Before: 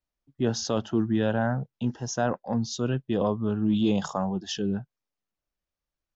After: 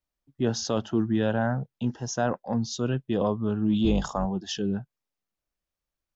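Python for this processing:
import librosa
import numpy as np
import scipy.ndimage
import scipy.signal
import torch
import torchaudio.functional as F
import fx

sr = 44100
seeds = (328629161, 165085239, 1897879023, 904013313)

y = fx.octave_divider(x, sr, octaves=2, level_db=-3.0, at=(3.84, 4.26))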